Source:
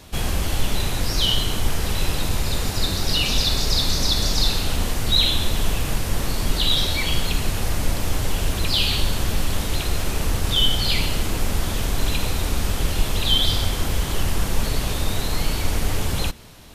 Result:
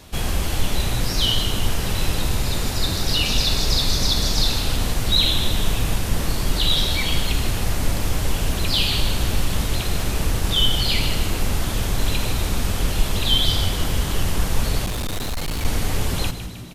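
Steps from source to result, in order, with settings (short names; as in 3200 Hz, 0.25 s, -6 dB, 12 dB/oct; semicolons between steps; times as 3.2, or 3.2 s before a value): frequency-shifting echo 0.156 s, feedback 56%, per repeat -64 Hz, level -11 dB; 14.86–15.65 hard clip -21.5 dBFS, distortion -20 dB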